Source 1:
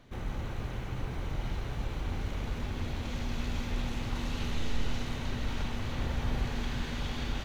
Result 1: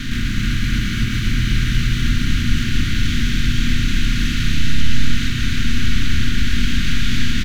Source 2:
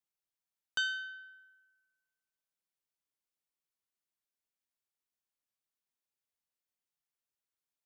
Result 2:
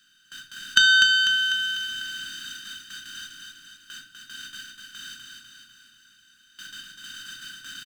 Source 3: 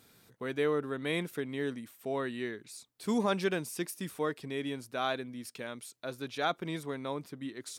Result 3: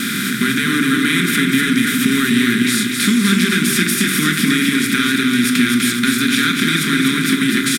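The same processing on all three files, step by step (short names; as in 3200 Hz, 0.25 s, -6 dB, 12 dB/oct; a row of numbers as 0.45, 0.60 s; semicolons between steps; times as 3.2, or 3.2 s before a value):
per-bin compression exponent 0.4; Chebyshev band-stop 290–1500 Hz, order 3; gate with hold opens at -51 dBFS; low shelf 100 Hz -7.5 dB; notches 50/100/150 Hz; compressor 6:1, threshold -35 dBFS; feedback echo 0.248 s, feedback 56%, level -4.5 dB; shoebox room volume 700 m³, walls furnished, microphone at 1.3 m; normalise peaks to -2 dBFS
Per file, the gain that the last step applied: +16.5, +21.5, +20.0 dB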